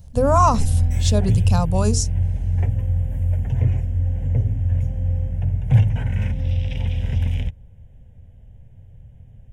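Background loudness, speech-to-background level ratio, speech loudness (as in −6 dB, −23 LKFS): −21.5 LKFS, −0.5 dB, −22.0 LKFS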